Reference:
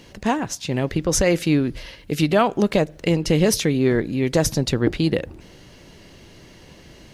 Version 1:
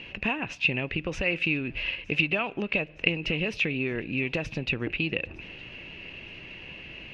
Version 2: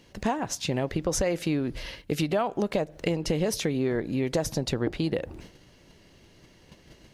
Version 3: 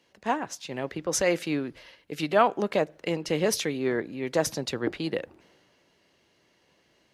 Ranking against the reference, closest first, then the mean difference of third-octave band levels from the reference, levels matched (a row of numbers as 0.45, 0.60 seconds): 2, 3, 1; 2.5, 5.0, 6.5 decibels